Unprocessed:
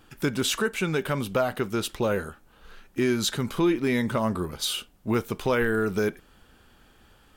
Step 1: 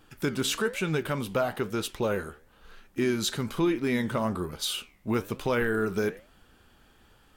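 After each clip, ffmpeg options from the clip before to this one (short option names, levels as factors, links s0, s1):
-af "flanger=delay=6:depth=9.5:regen=84:speed=1.1:shape=triangular,volume=1.26"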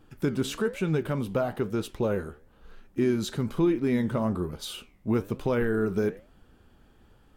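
-af "tiltshelf=f=850:g=5.5,volume=0.794"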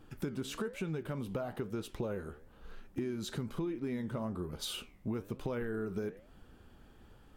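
-af "acompressor=threshold=0.0178:ratio=5"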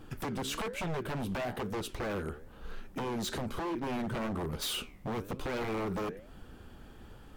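-af "aeval=exprs='0.015*(abs(mod(val(0)/0.015+3,4)-2)-1)':c=same,volume=2.24"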